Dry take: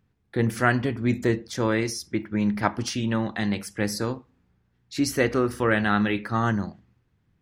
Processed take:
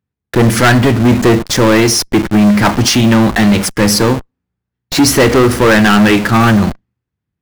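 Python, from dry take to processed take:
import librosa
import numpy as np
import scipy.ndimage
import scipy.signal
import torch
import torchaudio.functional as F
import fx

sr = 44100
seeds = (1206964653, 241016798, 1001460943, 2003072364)

p1 = scipy.signal.sosfilt(scipy.signal.butter(4, 40.0, 'highpass', fs=sr, output='sos'), x)
p2 = fx.leveller(p1, sr, passes=5)
p3 = fx.schmitt(p2, sr, flips_db=-26.0)
y = p2 + (p3 * 10.0 ** (-10.0 / 20.0))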